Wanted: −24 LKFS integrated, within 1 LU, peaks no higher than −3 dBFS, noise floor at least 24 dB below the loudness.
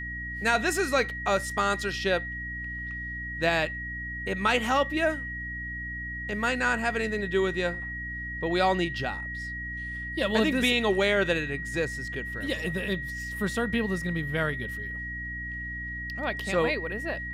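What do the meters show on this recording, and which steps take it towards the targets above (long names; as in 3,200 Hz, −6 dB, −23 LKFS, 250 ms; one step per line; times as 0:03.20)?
mains hum 60 Hz; hum harmonics up to 300 Hz; level of the hum −37 dBFS; interfering tone 1,900 Hz; level of the tone −34 dBFS; integrated loudness −28.5 LKFS; sample peak −10.0 dBFS; target loudness −24.0 LKFS
→ mains-hum notches 60/120/180/240/300 Hz
notch filter 1,900 Hz, Q 30
level +4.5 dB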